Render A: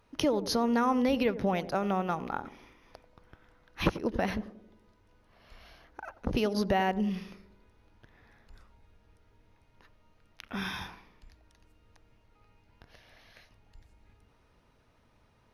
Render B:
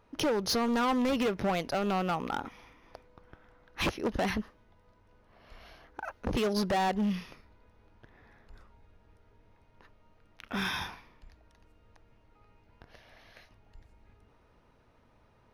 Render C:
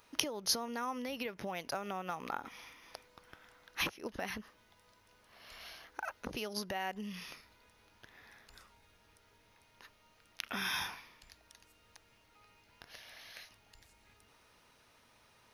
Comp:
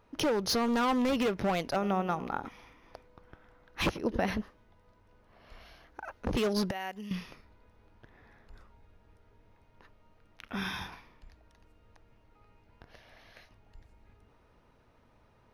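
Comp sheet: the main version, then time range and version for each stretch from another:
B
0:01.76–0:02.43: punch in from A
0:03.93–0:04.38: punch in from A, crossfade 0.24 s
0:05.63–0:06.09: punch in from A
0:06.71–0:07.11: punch in from C
0:10.46–0:10.92: punch in from A

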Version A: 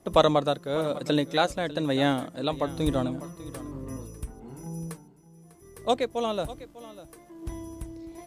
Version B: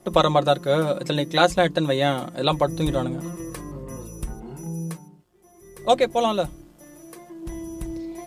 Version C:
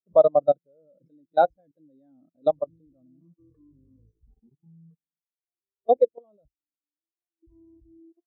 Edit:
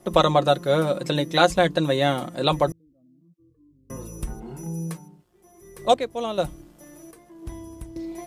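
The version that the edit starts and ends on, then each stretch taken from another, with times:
B
0:02.72–0:03.90: punch in from C
0:05.94–0:06.38: punch in from A
0:07.11–0:07.96: punch in from A

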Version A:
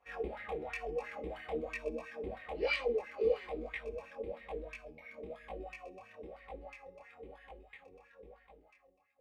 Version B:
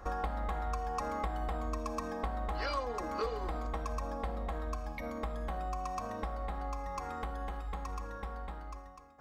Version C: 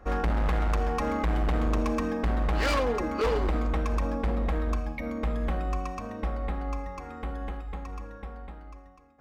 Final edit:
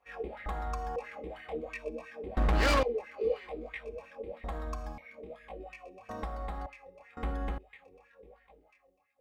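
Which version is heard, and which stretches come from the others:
A
0:00.46–0:00.96: punch in from B
0:02.37–0:02.83: punch in from C
0:04.44–0:04.98: punch in from B
0:06.09–0:06.66: punch in from B
0:07.17–0:07.58: punch in from C

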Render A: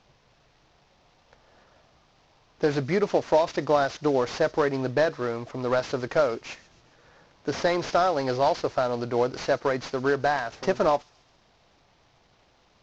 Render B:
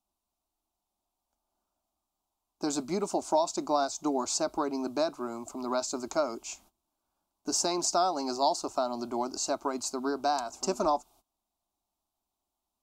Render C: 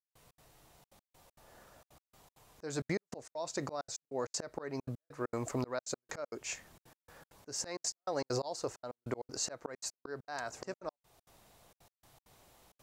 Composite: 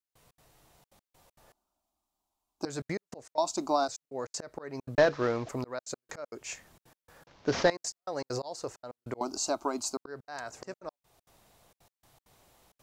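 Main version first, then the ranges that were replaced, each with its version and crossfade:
C
0:01.52–0:02.65: punch in from B
0:03.38–0:03.88: punch in from B
0:04.98–0:05.49: punch in from A
0:07.27–0:07.70: punch in from A
0:09.21–0:09.97: punch in from B

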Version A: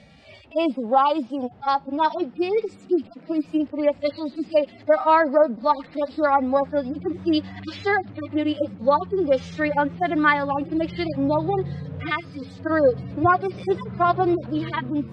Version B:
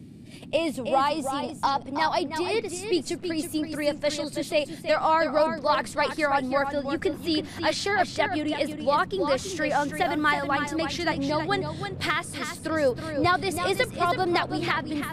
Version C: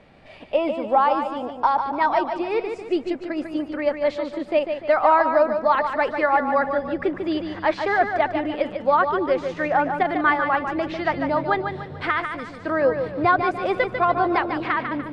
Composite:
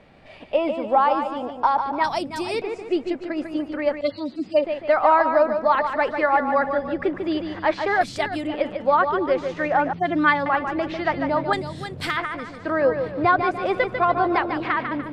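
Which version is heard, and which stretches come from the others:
C
0:02.04–0:02.62: punch in from B
0:04.01–0:04.64: punch in from A
0:08.01–0:08.47: punch in from B
0:09.93–0:10.46: punch in from A
0:11.53–0:12.17: punch in from B

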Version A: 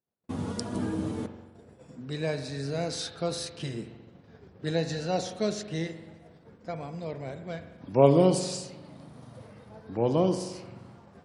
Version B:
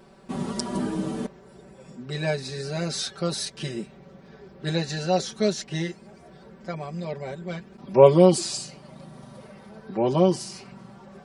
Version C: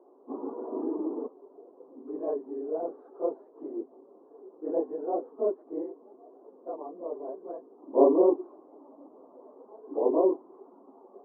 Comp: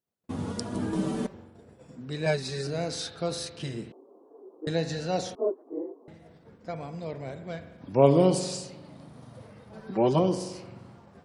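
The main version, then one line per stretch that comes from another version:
A
0:00.93–0:01.34: punch in from B
0:02.26–0:02.67: punch in from B
0:03.92–0:04.67: punch in from C
0:05.35–0:06.08: punch in from C
0:09.73–0:10.19: punch in from B

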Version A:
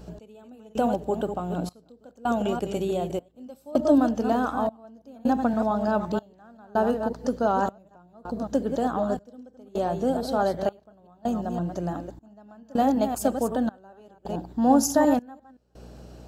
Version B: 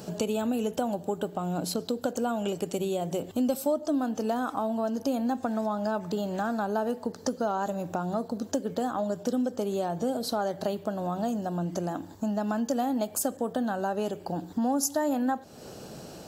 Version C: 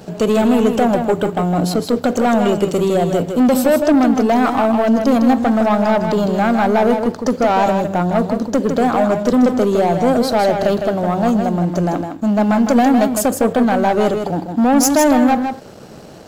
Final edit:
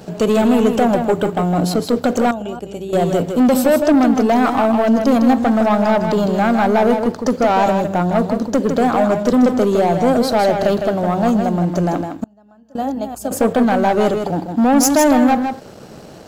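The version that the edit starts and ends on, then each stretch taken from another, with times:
C
0:02.31–0:02.93: punch in from A
0:12.24–0:13.31: punch in from A
not used: B

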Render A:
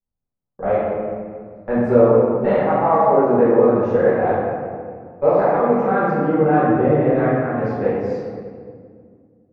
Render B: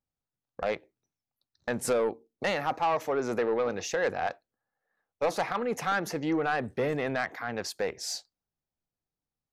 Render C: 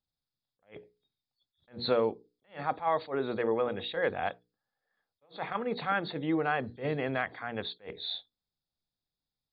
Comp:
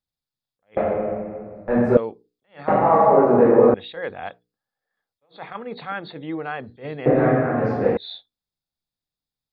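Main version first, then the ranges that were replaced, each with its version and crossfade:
C
0:00.77–0:01.97: punch in from A
0:02.68–0:03.74: punch in from A
0:07.06–0:07.97: punch in from A
not used: B

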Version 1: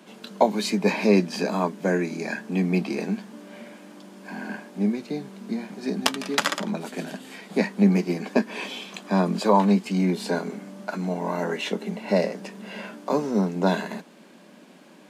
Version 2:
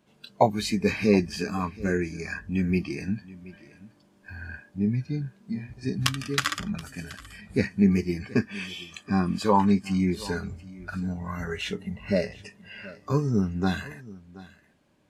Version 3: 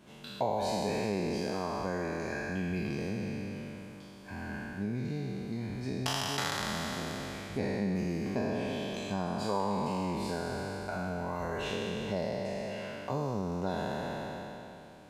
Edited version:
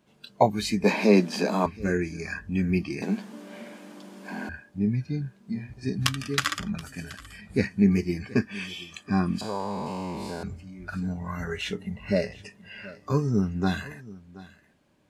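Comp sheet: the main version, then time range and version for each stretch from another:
2
0:00.84–0:01.66: punch in from 1
0:03.02–0:04.49: punch in from 1
0:09.41–0:10.43: punch in from 3

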